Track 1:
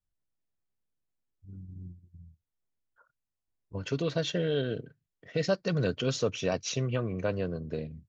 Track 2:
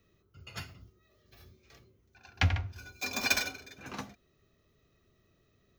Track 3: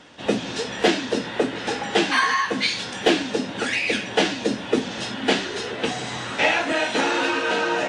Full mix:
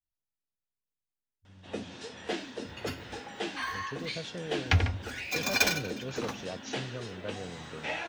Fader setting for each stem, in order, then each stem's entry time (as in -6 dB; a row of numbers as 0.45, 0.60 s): -10.0, +2.5, -15.5 dB; 0.00, 2.30, 1.45 s